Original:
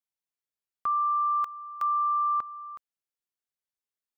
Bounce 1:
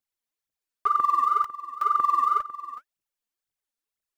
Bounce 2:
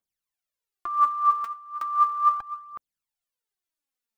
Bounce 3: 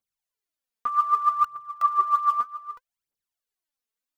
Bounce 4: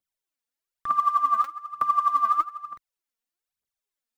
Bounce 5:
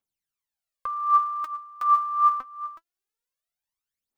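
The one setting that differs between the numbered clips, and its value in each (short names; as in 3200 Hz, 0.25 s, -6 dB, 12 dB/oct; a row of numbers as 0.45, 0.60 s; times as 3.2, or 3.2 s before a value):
phaser, rate: 2, 0.36, 0.64, 1.1, 0.24 Hz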